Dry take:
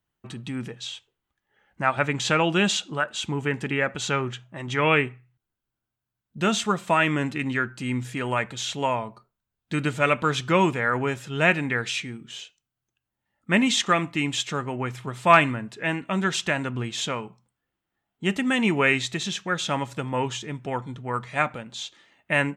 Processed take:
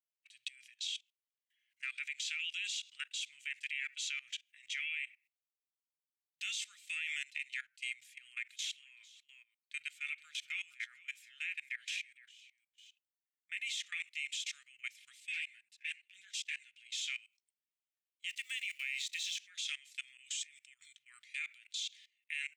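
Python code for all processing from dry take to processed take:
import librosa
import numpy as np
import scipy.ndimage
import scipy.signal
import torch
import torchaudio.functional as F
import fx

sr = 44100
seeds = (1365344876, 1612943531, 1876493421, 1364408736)

y = fx.chain(x, sr, fx.peak_eq(hz=5600.0, db=-10.5, octaves=2.9),
    fx.echo_single(ms=467, db=-13.0), at=(7.99, 14.0))
y = fx.chain(y, sr, fx.cheby1_bandstop(low_hz=530.0, high_hz=1500.0, order=3),
    fx.transient(attack_db=-6, sustain_db=-11),
    fx.ensemble(), at=(15.2, 16.85))
y = fx.chain(y, sr, fx.law_mismatch(coded='A'),
    fx.highpass(hz=60.0, slope=12), at=(18.28, 19.38))
y = fx.chain(y, sr, fx.peak_eq(hz=7800.0, db=11.0, octaves=0.3),
    fx.over_compress(threshold_db=-37.0, ratio=-1.0), at=(20.17, 20.97))
y = scipy.signal.sosfilt(scipy.signal.ellip(4, 1.0, 60, 2200.0, 'highpass', fs=sr, output='sos'), y)
y = fx.level_steps(y, sr, step_db=21)
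y = F.gain(torch.from_numpy(y), 3.0).numpy()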